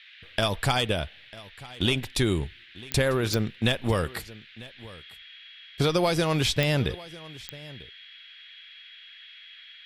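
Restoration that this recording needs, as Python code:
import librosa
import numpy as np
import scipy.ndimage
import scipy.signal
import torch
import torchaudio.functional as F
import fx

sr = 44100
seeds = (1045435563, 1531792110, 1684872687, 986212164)

y = fx.fix_declick_ar(x, sr, threshold=10.0)
y = fx.notch(y, sr, hz=3300.0, q=30.0)
y = fx.noise_reduce(y, sr, print_start_s=8.07, print_end_s=8.57, reduce_db=22.0)
y = fx.fix_echo_inverse(y, sr, delay_ms=946, level_db=-19.5)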